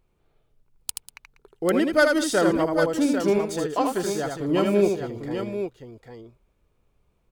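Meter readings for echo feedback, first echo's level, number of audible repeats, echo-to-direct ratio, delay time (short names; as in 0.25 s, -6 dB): no steady repeat, -4.5 dB, 3, -2.5 dB, 79 ms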